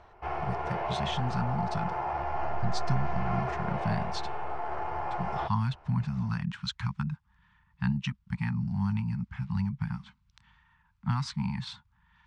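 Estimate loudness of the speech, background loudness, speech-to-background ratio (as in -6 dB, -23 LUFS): -33.5 LUFS, -34.5 LUFS, 1.0 dB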